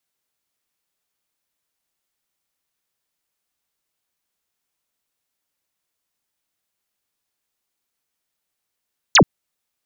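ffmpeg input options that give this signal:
ffmpeg -f lavfi -i "aevalsrc='0.447*clip(t/0.002,0,1)*clip((0.08-t)/0.002,0,1)*sin(2*PI*7600*0.08/log(110/7600)*(exp(log(110/7600)*t/0.08)-1))':duration=0.08:sample_rate=44100" out.wav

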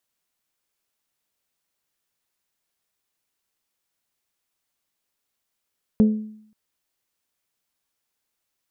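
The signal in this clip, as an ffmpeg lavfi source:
ffmpeg -f lavfi -i "aevalsrc='0.316*pow(10,-3*t/0.66)*sin(2*PI*215*t)+0.0891*pow(10,-3*t/0.406)*sin(2*PI*430*t)+0.0251*pow(10,-3*t/0.358)*sin(2*PI*516*t)+0.00708*pow(10,-3*t/0.306)*sin(2*PI*645*t)+0.002*pow(10,-3*t/0.25)*sin(2*PI*860*t)':duration=0.53:sample_rate=44100" out.wav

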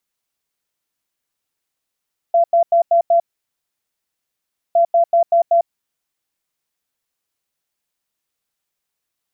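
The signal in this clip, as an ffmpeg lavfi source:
ffmpeg -f lavfi -i "aevalsrc='0.335*sin(2*PI*680*t)*clip(min(mod(mod(t,2.41),0.19),0.1-mod(mod(t,2.41),0.19))/0.005,0,1)*lt(mod(t,2.41),0.95)':duration=4.82:sample_rate=44100" out.wav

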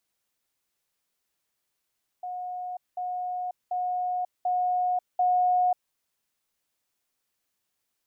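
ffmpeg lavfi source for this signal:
ffmpeg -f lavfi -i "aevalsrc='pow(10,(-31.5+3*floor(t/0.74))/20)*sin(2*PI*725*t)*clip(min(mod(t,0.74),0.54-mod(t,0.74))/0.005,0,1)':duration=3.7:sample_rate=44100" out.wav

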